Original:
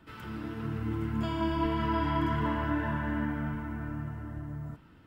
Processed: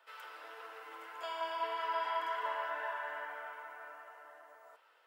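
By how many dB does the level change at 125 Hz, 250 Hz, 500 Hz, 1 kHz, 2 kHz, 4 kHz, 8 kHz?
under -40 dB, -33.0 dB, -5.0 dB, -2.5 dB, -2.5 dB, -2.5 dB, no reading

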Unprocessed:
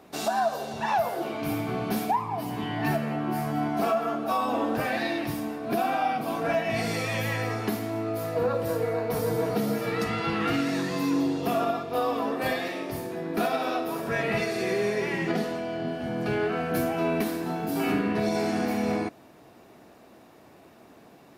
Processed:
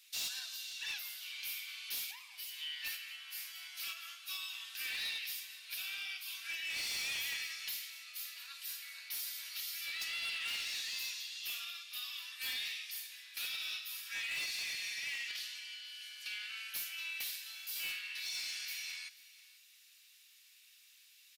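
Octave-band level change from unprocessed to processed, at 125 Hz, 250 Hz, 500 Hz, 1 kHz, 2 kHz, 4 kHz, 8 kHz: under -40 dB, under -40 dB, under -40 dB, -31.0 dB, -7.5 dB, +1.5 dB, 0.0 dB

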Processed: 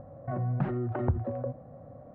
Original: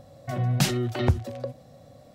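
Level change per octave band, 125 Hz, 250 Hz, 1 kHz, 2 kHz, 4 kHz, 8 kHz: -5.0 dB, -4.5 dB, -3.5 dB, -12.0 dB, under -30 dB, under -40 dB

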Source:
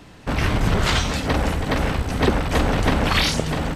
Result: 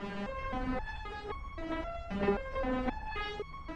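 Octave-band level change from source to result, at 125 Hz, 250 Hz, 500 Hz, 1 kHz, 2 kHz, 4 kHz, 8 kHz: -22.5 dB, -14.0 dB, -11.5 dB, -13.5 dB, -16.5 dB, -23.5 dB, under -30 dB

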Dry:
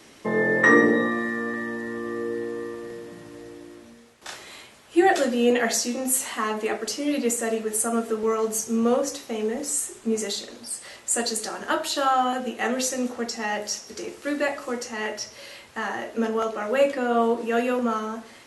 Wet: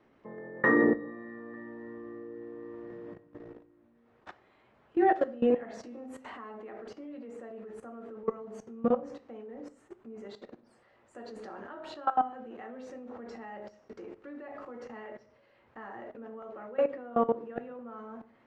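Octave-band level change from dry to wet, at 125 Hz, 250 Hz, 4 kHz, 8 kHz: no reading, -9.0 dB, -25.5 dB, under -35 dB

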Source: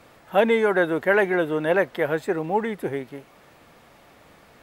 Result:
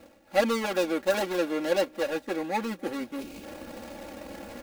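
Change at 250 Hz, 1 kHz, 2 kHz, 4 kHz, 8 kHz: -4.0 dB, -5.5 dB, -9.0 dB, +2.5 dB, no reading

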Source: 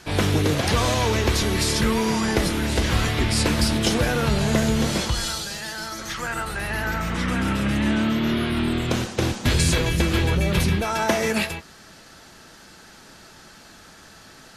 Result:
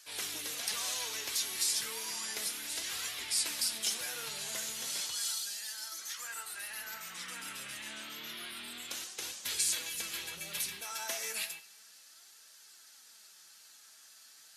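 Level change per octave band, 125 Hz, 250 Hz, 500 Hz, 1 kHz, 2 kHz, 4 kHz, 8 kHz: -40.0 dB, -34.0 dB, -26.5 dB, -20.5 dB, -15.0 dB, -9.0 dB, -4.0 dB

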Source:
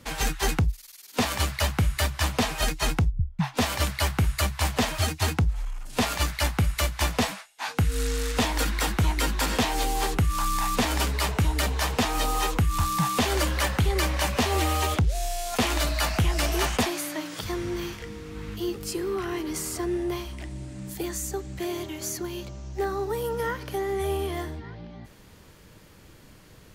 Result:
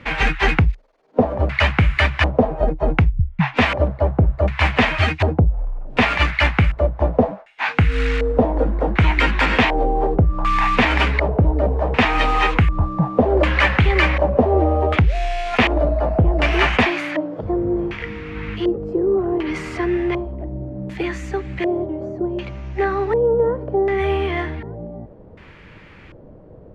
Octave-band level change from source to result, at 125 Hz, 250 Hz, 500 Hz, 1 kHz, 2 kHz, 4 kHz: +7.5 dB, +8.5 dB, +11.0 dB, +7.5 dB, +10.5 dB, +2.5 dB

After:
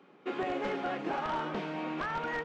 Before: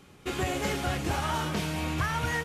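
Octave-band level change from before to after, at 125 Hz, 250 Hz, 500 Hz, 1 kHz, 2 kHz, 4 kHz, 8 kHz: -15.5 dB, -3.5 dB, -1.0 dB, -2.0 dB, -5.5 dB, -10.5 dB, under -20 dB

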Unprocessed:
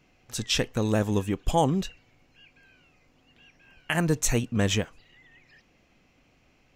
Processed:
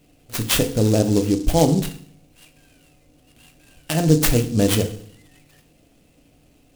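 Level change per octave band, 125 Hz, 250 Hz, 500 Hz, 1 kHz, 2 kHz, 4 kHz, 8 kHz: +8.0 dB, +8.0 dB, +7.5 dB, +1.5 dB, +1.5 dB, +4.5 dB, +5.5 dB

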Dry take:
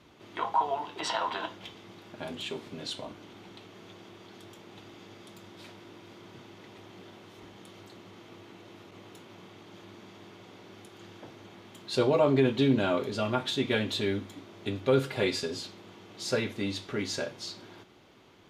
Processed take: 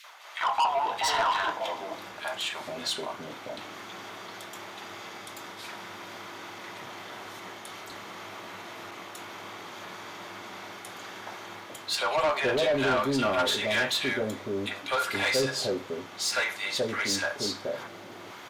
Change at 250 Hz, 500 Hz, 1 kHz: -4.0 dB, +0.5 dB, +5.5 dB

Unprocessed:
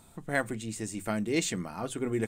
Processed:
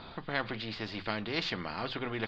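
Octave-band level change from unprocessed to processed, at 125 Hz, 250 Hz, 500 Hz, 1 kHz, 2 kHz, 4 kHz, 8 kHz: -4.5 dB, -6.5 dB, -5.0 dB, +0.5 dB, -0.5 dB, +4.0 dB, -23.5 dB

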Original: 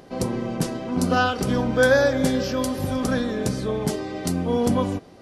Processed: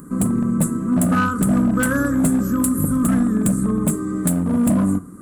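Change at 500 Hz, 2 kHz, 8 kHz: -7.0 dB, -2.0 dB, +9.0 dB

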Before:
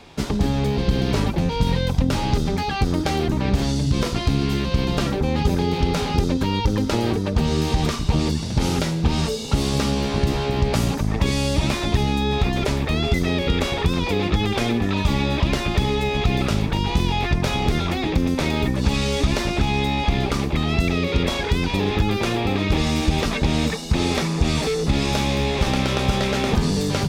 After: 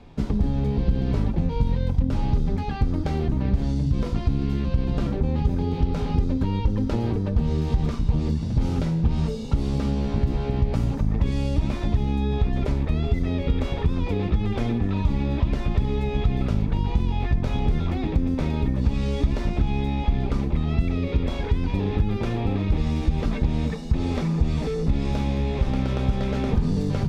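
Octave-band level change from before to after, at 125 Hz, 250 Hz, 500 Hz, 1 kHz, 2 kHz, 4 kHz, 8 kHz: -1.0 dB, -3.5 dB, -6.5 dB, -9.0 dB, -12.5 dB, -15.0 dB, under -15 dB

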